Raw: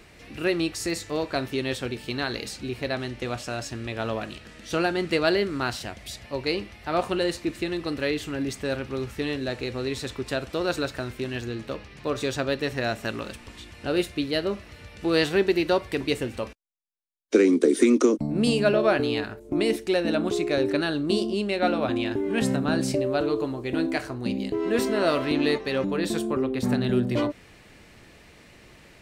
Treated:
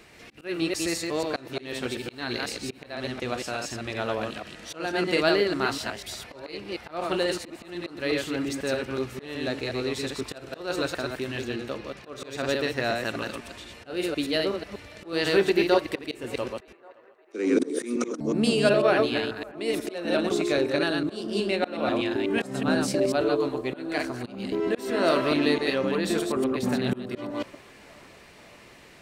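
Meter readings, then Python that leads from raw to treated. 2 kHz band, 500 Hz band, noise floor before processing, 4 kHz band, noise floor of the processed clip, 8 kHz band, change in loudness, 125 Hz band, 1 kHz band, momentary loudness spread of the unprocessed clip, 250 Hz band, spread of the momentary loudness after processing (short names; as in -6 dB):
0.0 dB, -1.0 dB, -52 dBFS, 0.0 dB, -51 dBFS, 0.0 dB, -1.0 dB, -4.0 dB, 0.0 dB, 11 LU, -2.5 dB, 13 LU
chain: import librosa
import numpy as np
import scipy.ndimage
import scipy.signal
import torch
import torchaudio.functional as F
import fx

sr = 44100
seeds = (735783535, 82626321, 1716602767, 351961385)

y = fx.reverse_delay(x, sr, ms=123, wet_db=-3.5)
y = fx.auto_swell(y, sr, attack_ms=261.0)
y = fx.low_shelf(y, sr, hz=130.0, db=-9.5)
y = fx.echo_banded(y, sr, ms=567, feedback_pct=83, hz=950.0, wet_db=-23)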